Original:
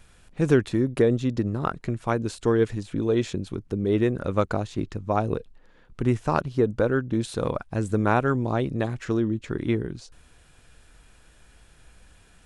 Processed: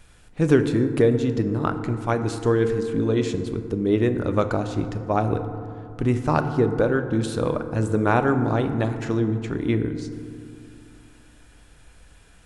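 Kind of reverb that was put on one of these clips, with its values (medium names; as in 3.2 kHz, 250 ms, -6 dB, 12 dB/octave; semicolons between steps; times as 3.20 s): FDN reverb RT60 2.5 s, low-frequency decay 1.2×, high-frequency decay 0.35×, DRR 7.5 dB; trim +1.5 dB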